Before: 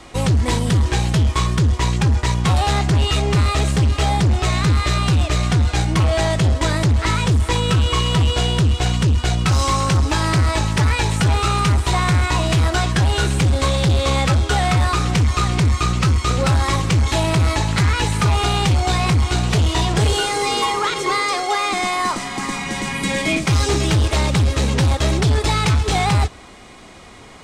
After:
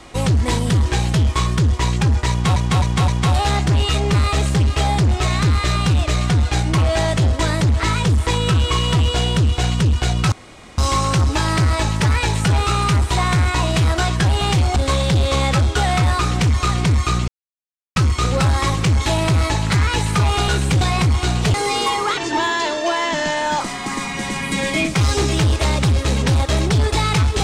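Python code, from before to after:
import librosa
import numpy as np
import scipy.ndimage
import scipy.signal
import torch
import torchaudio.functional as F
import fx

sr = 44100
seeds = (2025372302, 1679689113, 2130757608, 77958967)

y = fx.edit(x, sr, fx.repeat(start_s=2.3, length_s=0.26, count=4),
    fx.insert_room_tone(at_s=9.54, length_s=0.46),
    fx.swap(start_s=13.17, length_s=0.33, other_s=18.54, other_length_s=0.35),
    fx.insert_silence(at_s=16.02, length_s=0.68),
    fx.cut(start_s=19.62, length_s=0.68),
    fx.speed_span(start_s=20.93, length_s=1.19, speed=0.83), tone=tone)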